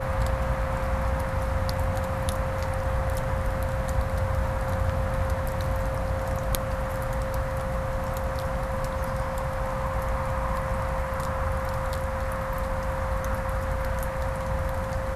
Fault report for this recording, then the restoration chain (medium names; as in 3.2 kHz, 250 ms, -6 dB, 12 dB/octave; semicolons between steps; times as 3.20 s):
whine 530 Hz -32 dBFS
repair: band-stop 530 Hz, Q 30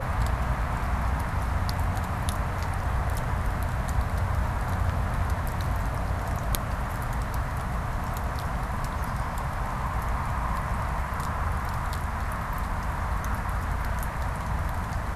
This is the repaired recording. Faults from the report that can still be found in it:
nothing left